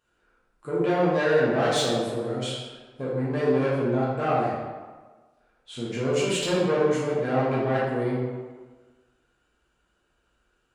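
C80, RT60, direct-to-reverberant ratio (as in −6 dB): 2.5 dB, 1.4 s, −8.0 dB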